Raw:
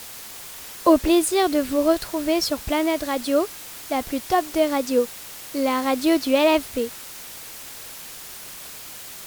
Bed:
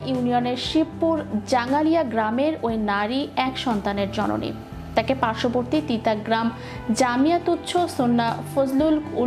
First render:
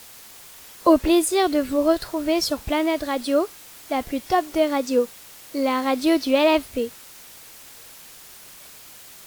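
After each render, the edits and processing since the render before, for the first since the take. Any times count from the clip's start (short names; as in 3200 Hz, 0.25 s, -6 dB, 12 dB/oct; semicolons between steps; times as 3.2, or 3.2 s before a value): noise print and reduce 6 dB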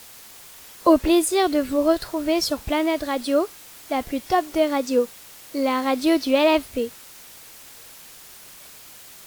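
nothing audible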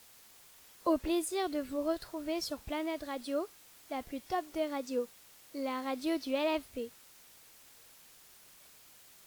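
gain -14 dB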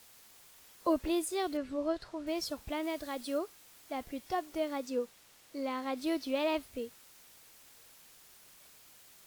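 1.57–2.27 air absorption 74 m; 2.83–3.38 high shelf 4900 Hz +4.5 dB; 4.9–5.97 high shelf 9500 Hz -6.5 dB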